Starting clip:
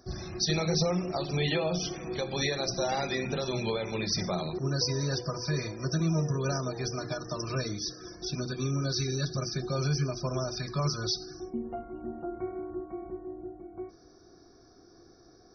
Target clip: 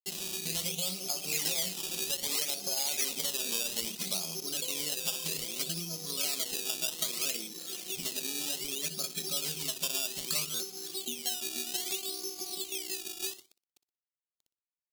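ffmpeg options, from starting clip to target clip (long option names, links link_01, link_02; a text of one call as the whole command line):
ffmpeg -i in.wav -af "afftfilt=real='re*between(b*sr/4096,140,3200)':imag='im*between(b*sr/4096,140,3200)':win_size=4096:overlap=0.75,agate=range=-40dB:threshold=-54dB:ratio=16:detection=peak,bandreject=frequency=50:width_type=h:width=6,bandreject=frequency=100:width_type=h:width=6,bandreject=frequency=150:width_type=h:width=6,bandreject=frequency=200:width_type=h:width=6,bandreject=frequency=250:width_type=h:width=6,bandreject=frequency=300:width_type=h:width=6,bandreject=frequency=350:width_type=h:width=6,bandreject=frequency=400:width_type=h:width=6,acompressor=threshold=-41dB:ratio=4,aresample=16000,aeval=exprs='sgn(val(0))*max(abs(val(0))-0.00119,0)':channel_layout=same,aresample=44100,aecho=1:1:63|126|189:0.178|0.0516|0.015,acrusher=samples=15:mix=1:aa=0.000001:lfo=1:lforange=15:lforate=0.6,aexciter=amount=9.7:drive=6.2:freq=2400,asetrate=45938,aresample=44100,volume=-1dB" out.wav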